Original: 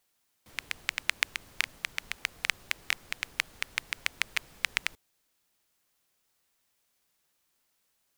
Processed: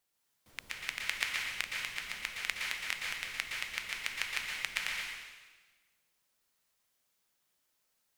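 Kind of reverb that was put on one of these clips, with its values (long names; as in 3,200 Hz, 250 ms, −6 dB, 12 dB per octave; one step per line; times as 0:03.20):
dense smooth reverb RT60 1.3 s, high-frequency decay 1×, pre-delay 105 ms, DRR −2 dB
level −7 dB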